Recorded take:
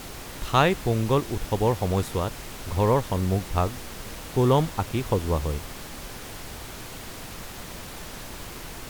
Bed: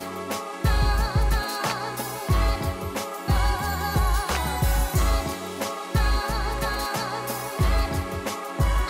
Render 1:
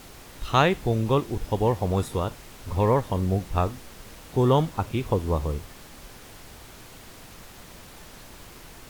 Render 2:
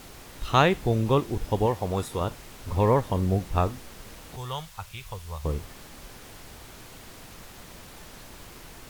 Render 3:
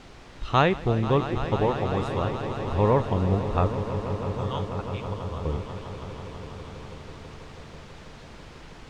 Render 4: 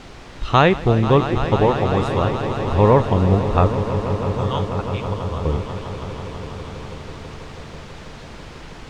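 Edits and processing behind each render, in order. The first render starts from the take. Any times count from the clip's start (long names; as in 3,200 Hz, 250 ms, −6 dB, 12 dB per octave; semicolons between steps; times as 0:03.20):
noise reduction from a noise print 7 dB
0:01.66–0:02.21: low-shelf EQ 390 Hz −5.5 dB; 0:04.36–0:05.45: guitar amp tone stack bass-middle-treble 10-0-10
high-frequency loss of the air 120 metres; echo that builds up and dies away 163 ms, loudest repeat 5, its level −14 dB
level +7.5 dB; brickwall limiter −1 dBFS, peak gain reduction 2 dB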